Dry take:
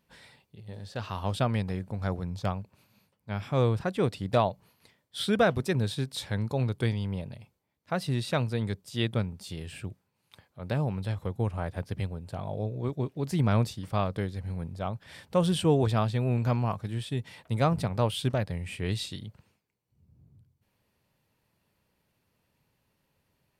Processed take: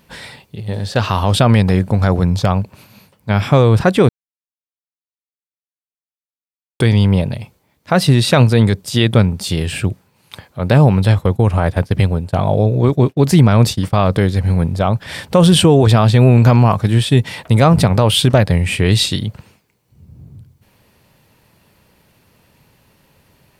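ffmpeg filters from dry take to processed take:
ffmpeg -i in.wav -filter_complex "[0:a]asplit=3[link_01][link_02][link_03];[link_01]afade=type=out:start_time=10.66:duration=0.02[link_04];[link_02]agate=range=-33dB:threshold=-40dB:ratio=3:release=100:detection=peak,afade=type=in:start_time=10.66:duration=0.02,afade=type=out:start_time=13.96:duration=0.02[link_05];[link_03]afade=type=in:start_time=13.96:duration=0.02[link_06];[link_04][link_05][link_06]amix=inputs=3:normalize=0,asplit=3[link_07][link_08][link_09];[link_07]atrim=end=4.09,asetpts=PTS-STARTPTS,afade=type=out:start_time=4.086:duration=0.004:curve=hsin[link_10];[link_08]atrim=start=4.09:end=6.8,asetpts=PTS-STARTPTS,volume=0[link_11];[link_09]atrim=start=6.8,asetpts=PTS-STARTPTS,afade=type=in:duration=0.004:curve=hsin[link_12];[link_10][link_11][link_12]concat=n=3:v=0:a=1,alimiter=level_in=21dB:limit=-1dB:release=50:level=0:latency=1,volume=-1dB" out.wav

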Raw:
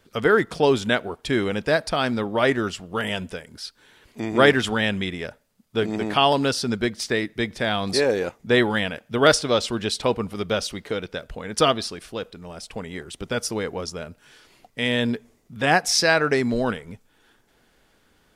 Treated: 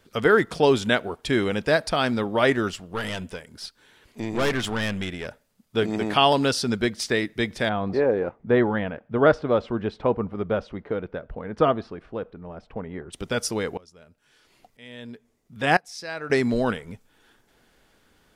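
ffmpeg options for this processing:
ffmpeg -i in.wav -filter_complex "[0:a]asettb=1/sr,asplit=3[link_01][link_02][link_03];[link_01]atrim=end=2.714[link_04];[link_02]atrim=start=2.71:end=5.26,asetpts=PTS-STARTPTS,afade=type=in:duration=0.004:curve=qsin,afade=type=out:start_time=2.546:duration=0.004:curve=qsin,aeval=exprs='(tanh(10*val(0)+0.5)-tanh(0.5))/10':channel_layout=same[link_05];[link_03]atrim=start=5.256[link_06];[link_04][link_05]acrossfade=duration=0.004:curve1=hsin:curve2=qsin[link_07];[link_07][link_06]acrossfade=duration=0.004:curve1=qsin:curve2=hsin,asplit=3[link_08][link_09][link_10];[link_08]afade=type=out:start_time=7.68:duration=0.02[link_11];[link_09]lowpass=1300,afade=type=in:start_time=7.68:duration=0.02,afade=type=out:start_time=13.12:duration=0.02[link_12];[link_10]afade=type=in:start_time=13.12:duration=0.02[link_13];[link_11][link_12][link_13]amix=inputs=3:normalize=0,asettb=1/sr,asplit=3[link_14][link_15][link_16];[link_14]atrim=end=13.774[link_17];[link_15]atrim=start=13.77:end=16.3,asetpts=PTS-STARTPTS,afade=type=in:duration=0.004:curve=qsin,afade=type=out:start_time=2.526:duration=0.004:curve=qsin,aeval=exprs='val(0)*pow(10,-23*if(lt(mod(-1*n/s,1),2*abs(-1)/1000),1-mod(-1*n/s,1)/(2*abs(-1)/1000),(mod(-1*n/s,1)-2*abs(-1)/1000)/(1-2*abs(-1)/1000))/20)':channel_layout=same[link_18];[link_16]atrim=start=16.296[link_19];[link_17][link_18]acrossfade=duration=0.004:curve1=hsin:curve2=qsin[link_20];[link_20][link_19]acrossfade=duration=0.004:curve1=qsin:curve2=hsin" out.wav

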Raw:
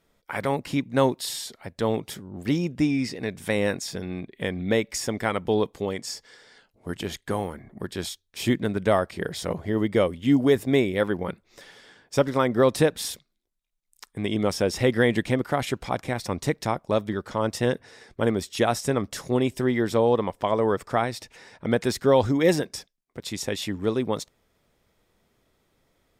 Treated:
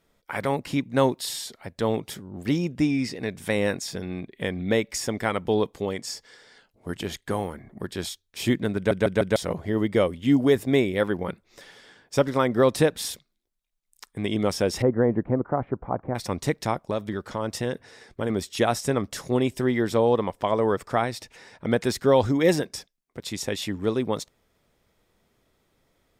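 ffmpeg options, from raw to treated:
ffmpeg -i in.wav -filter_complex "[0:a]asettb=1/sr,asplit=3[link_01][link_02][link_03];[link_01]atrim=end=14.824[link_04];[link_02]atrim=start=14.82:end=16.15,asetpts=PTS-STARTPTS,afade=type=in:duration=0.004:curve=qsin,afade=type=out:start_time=1.326:duration=0.004:curve=qsin,lowpass=frequency=1200:width=0.5412,lowpass=frequency=1200:width=1.3066[link_05];[link_03]atrim=start=16.146[link_06];[link_04][link_05]acrossfade=duration=0.004:curve1=hsin:curve2=qsin[link_07];[link_07][link_06]acrossfade=duration=0.004:curve1=qsin:curve2=hsin,asettb=1/sr,asplit=3[link_08][link_09][link_10];[link_08]atrim=end=16.904[link_11];[link_09]atrim=start=16.9:end=18.3,asetpts=PTS-STARTPTS,afade=type=in:duration=0.004:curve=qsin,afade=type=out:start_time=1.396:duration=0.004:curve=qsin,acompressor=threshold=-25dB:ratio=2:attack=3.2:release=140:knee=1:detection=peak[link_12];[link_10]atrim=start=18.296[link_13];[link_11][link_12]acrossfade=duration=0.004:curve1=hsin:curve2=qsin[link_14];[link_14][link_13]acrossfade=duration=0.004:curve1=qsin:curve2=hsin,asplit=5[link_15][link_16][link_17][link_18][link_19];[link_15]atrim=end=8.912[link_20];[link_16]atrim=start=8.758:end=8.912[link_21];[link_17]atrim=start=8.758:end=8.912[link_22];[link_18]atrim=start=8.758:end=8.912[link_23];[link_19]atrim=start=9.358[link_24];[link_20][link_21]acrossfade=duration=0.004:curve1=hsin:curve2=hsin[link_25];[link_25][link_22]acrossfade=duration=0.004:curve1=hsin:curve2=hsin[link_26];[link_26][link_23]acrossfade=duration=0.004:curve1=hsin:curve2=hsin[link_27];[link_27][link_24]acrossfade=duration=0.004:curve1=hsin:curve2=hsin" out.wav

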